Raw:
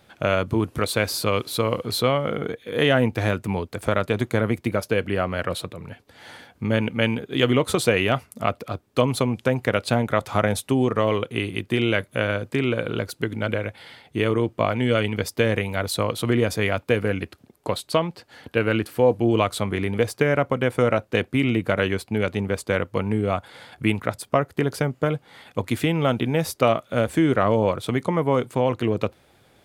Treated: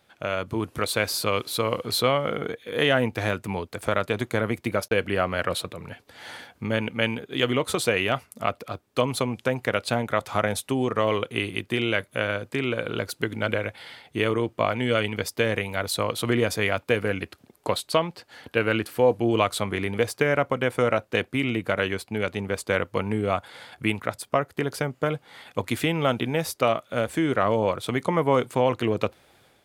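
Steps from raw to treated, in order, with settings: bass shelf 410 Hz -6 dB; 4.88–5.65 s: gate -33 dBFS, range -58 dB; level rider gain up to 11 dB; trim -5.5 dB

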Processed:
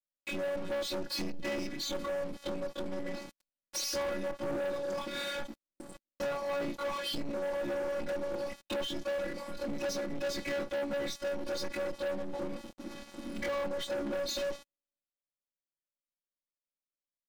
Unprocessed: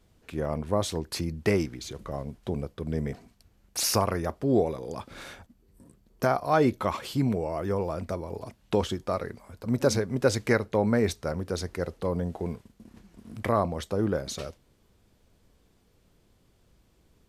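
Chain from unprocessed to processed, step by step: short-time spectra conjugated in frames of 47 ms; compression 3:1, threshold -44 dBFS, peak gain reduction 17 dB; high-pass 84 Hz 24 dB/octave; gate -60 dBFS, range -25 dB; frequency weighting D; transient shaper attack +2 dB, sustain +8 dB; robot voice 283 Hz; tilt shelf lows +7.5 dB, about 850 Hz; comb 5.5 ms, depth 89%; waveshaping leveller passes 5; trim -6.5 dB

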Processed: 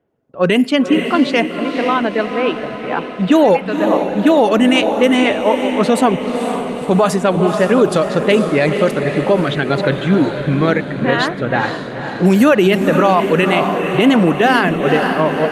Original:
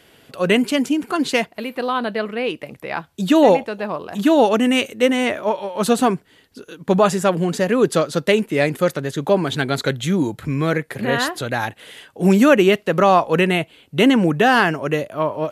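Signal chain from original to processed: high-pass 65 Hz 12 dB/octave; gate -38 dBFS, range -18 dB; reverb removal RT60 0.57 s; level-controlled noise filter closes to 820 Hz, open at -11.5 dBFS; hum notches 50/100 Hz; echo that smears into a reverb 496 ms, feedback 60%, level -8 dB; on a send at -22 dB: reverberation, pre-delay 43 ms; on the sum: loudness maximiser +7.5 dB; trim -1.5 dB; Opus 48 kbps 48 kHz

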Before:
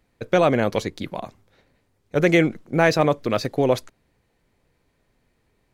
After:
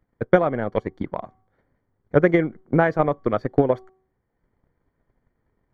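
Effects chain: Savitzky-Golay filter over 41 samples; de-hum 377.5 Hz, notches 3; transient shaper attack +11 dB, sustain -8 dB, from 0.87 s sustain -3 dB; peaking EQ 580 Hz -2 dB; trim -4 dB

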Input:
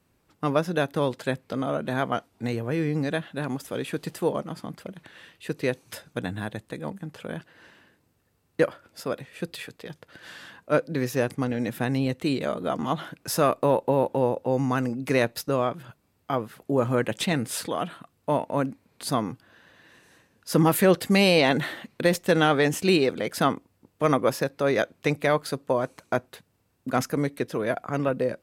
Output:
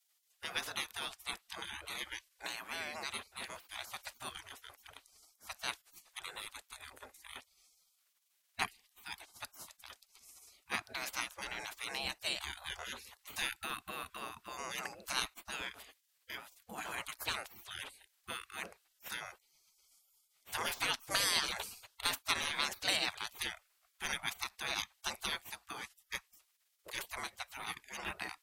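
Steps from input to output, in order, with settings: spectral gate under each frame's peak -25 dB weak; trim +3.5 dB

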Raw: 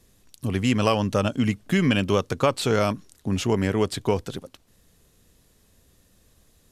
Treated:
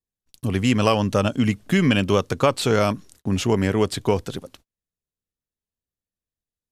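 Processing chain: gate -51 dBFS, range -37 dB; trim +2.5 dB

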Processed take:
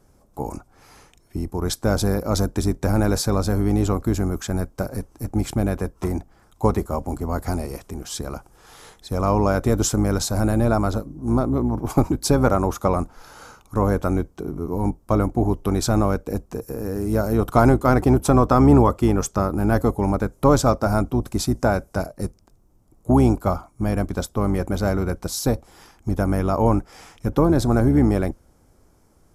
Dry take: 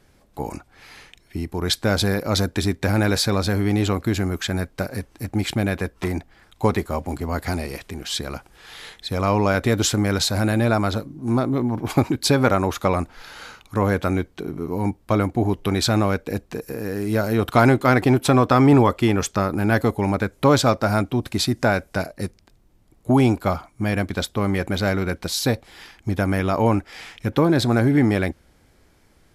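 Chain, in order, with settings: octave divider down 2 oct, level -6 dB; high-order bell 2.7 kHz -11 dB

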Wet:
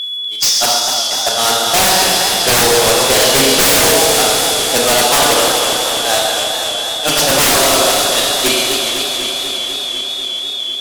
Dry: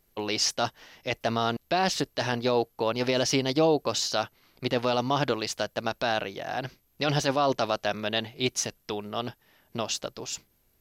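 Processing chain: one-bit delta coder 64 kbps, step -27 dBFS; high-pass 82 Hz 6 dB/octave; gate -22 dBFS, range -51 dB; tone controls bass -11 dB, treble +10 dB; in parallel at -1.5 dB: peak limiter -21 dBFS, peak gain reduction 9 dB; on the sum: whistle 3.4 kHz -41 dBFS; feedback echo behind a high-pass 137 ms, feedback 82%, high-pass 2.7 kHz, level -11 dB; on a send at -2 dB: reverberation RT60 1.3 s, pre-delay 26 ms; on the sum: sine folder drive 19 dB, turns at -7.5 dBFS; modulated delay 248 ms, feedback 77%, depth 131 cents, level -7 dB; trim -1 dB

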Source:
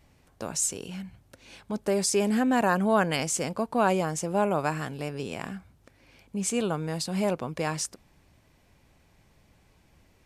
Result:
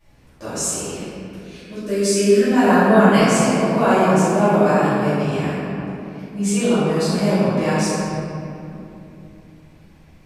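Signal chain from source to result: 0.84–2.48 s: static phaser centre 340 Hz, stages 4; simulated room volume 120 m³, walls hard, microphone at 2.5 m; trim -6.5 dB

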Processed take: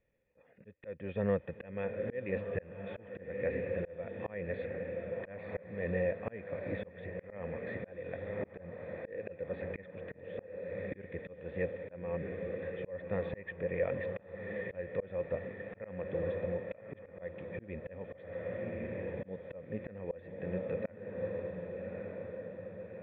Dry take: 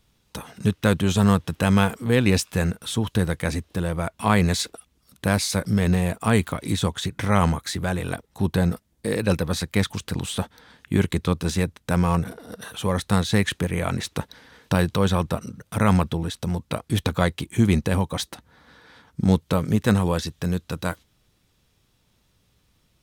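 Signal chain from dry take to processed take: cascade formant filter e; echo that smears into a reverb 1216 ms, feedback 50%, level -6.5 dB; slow attack 405 ms; trim +2.5 dB

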